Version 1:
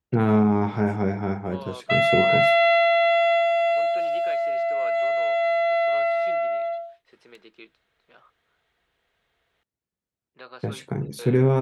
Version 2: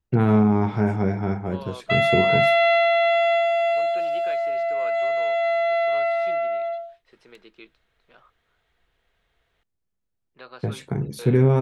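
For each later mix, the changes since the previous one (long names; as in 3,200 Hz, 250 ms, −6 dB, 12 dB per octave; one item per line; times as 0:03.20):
master: remove high-pass filter 130 Hz 6 dB per octave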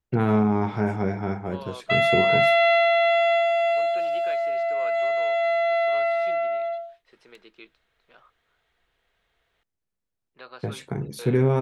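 master: add low-shelf EQ 270 Hz −5.5 dB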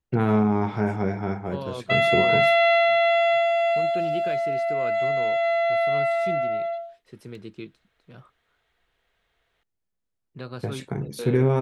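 second voice: remove band-pass filter 700–4,100 Hz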